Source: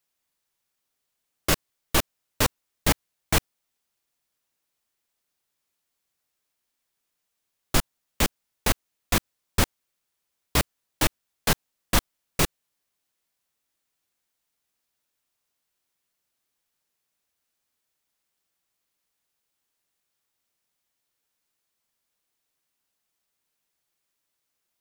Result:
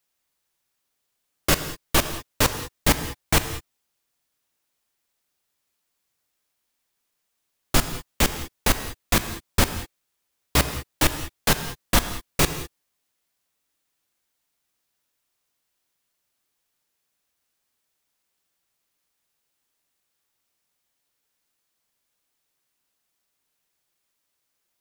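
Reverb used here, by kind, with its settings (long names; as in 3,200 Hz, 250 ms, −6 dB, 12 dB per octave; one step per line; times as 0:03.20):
reverb whose tail is shaped and stops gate 230 ms flat, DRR 9 dB
level +2.5 dB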